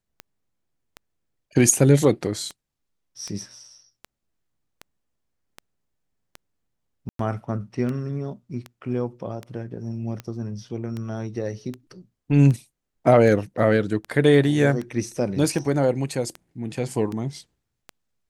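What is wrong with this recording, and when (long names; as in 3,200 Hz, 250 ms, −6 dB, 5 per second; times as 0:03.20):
scratch tick 78 rpm −19 dBFS
0:07.09–0:07.19: drop-out 103 ms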